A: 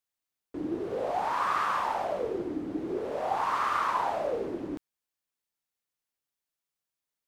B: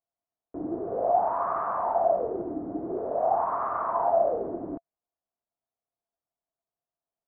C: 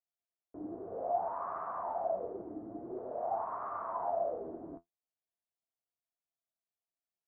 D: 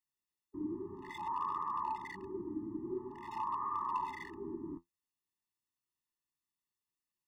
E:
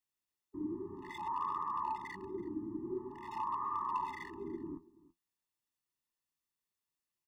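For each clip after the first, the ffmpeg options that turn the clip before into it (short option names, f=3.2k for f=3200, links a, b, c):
-af "lowpass=f=1.2k:w=0.5412,lowpass=f=1.2k:w=1.3066,equalizer=f=680:t=o:w=0.21:g=15"
-af "flanger=delay=7.9:depth=4.7:regen=52:speed=0.33:shape=triangular,volume=-6.5dB"
-af "asoftclip=type=hard:threshold=-31dB,afftfilt=real='re*eq(mod(floor(b*sr/1024/420),2),0)':imag='im*eq(mod(floor(b*sr/1024/420),2),0)':win_size=1024:overlap=0.75,volume=4dB"
-af "aecho=1:1:331:0.0891"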